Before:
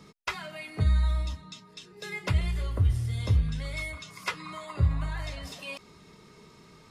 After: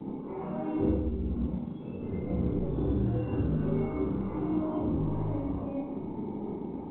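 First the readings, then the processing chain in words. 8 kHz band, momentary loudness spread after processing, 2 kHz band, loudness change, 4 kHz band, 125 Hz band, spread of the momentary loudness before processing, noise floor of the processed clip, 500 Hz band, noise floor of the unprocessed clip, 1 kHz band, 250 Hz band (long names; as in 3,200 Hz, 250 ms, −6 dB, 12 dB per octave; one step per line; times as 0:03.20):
below −30 dB, 8 LU, −17.0 dB, −1.5 dB, below −20 dB, −4.0 dB, 14 LU, −39 dBFS, +9.5 dB, −55 dBFS, −0.5 dB, +12.0 dB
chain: time-frequency box erased 0:00.96–0:02.54, 280–2,000 Hz
high-pass filter 74 Hz 24 dB per octave
low-shelf EQ 140 Hz +2.5 dB
leveller curve on the samples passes 5
brickwall limiter −21.5 dBFS, peak gain reduction 8.5 dB
reversed playback
downward compressor 12 to 1, threshold −32 dBFS, peak gain reduction 9.5 dB
reversed playback
formant resonators in series u
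delay with pitch and tempo change per echo 186 ms, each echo +4 semitones, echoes 2, each echo −6 dB
on a send: feedback echo with a long and a short gap by turns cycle 1,343 ms, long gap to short 3 to 1, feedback 38%, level −22.5 dB
on the sum: four-comb reverb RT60 0.91 s, combs from 30 ms, DRR −7.5 dB
level +9 dB
A-law companding 64 kbit/s 8,000 Hz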